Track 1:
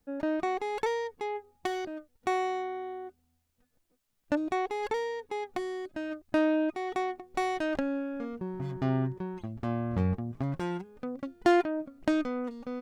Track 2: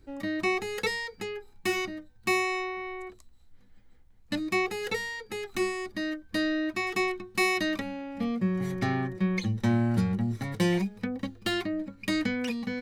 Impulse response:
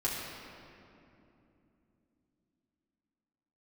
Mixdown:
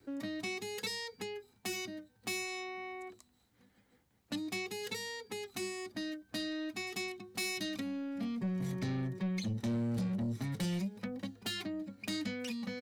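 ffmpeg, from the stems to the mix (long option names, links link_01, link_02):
-filter_complex "[0:a]asoftclip=type=tanh:threshold=-28dB,volume=-2.5dB[link_01];[1:a]adelay=1.9,volume=-0.5dB[link_02];[link_01][link_02]amix=inputs=2:normalize=0,highpass=140,acrossover=split=250|3000[link_03][link_04][link_05];[link_04]acompressor=threshold=-44dB:ratio=6[link_06];[link_03][link_06][link_05]amix=inputs=3:normalize=0,asoftclip=type=tanh:threshold=-30dB"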